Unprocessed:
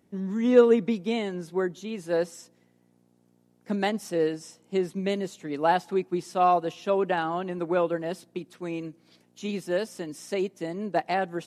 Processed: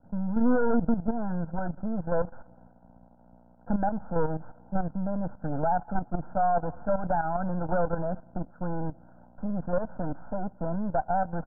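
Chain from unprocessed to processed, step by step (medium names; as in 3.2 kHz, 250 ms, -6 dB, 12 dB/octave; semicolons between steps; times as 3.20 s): partial rectifier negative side -12 dB; in parallel at -1 dB: compression 4:1, threshold -37 dBFS, peak gain reduction 19.5 dB; on the sum: hard clipper -17.5 dBFS, distortion -12 dB; steep low-pass 1.5 kHz 96 dB/octave; comb 1.3 ms, depth 99%; level held to a coarse grid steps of 12 dB; peak limiter -24 dBFS, peak gain reduction 9 dB; trim +8 dB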